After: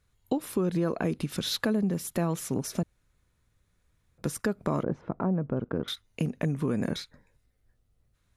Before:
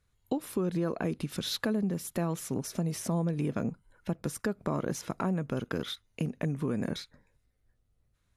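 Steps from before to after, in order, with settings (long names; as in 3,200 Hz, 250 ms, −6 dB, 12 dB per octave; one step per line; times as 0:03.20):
0:02.83–0:04.18: fill with room tone
0:04.83–0:05.88: low-pass filter 1,000 Hz 12 dB per octave
level +3 dB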